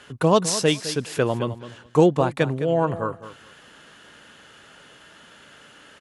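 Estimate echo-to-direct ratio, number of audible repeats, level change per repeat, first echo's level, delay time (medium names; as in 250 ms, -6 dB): -13.5 dB, 2, -15.0 dB, -13.5 dB, 210 ms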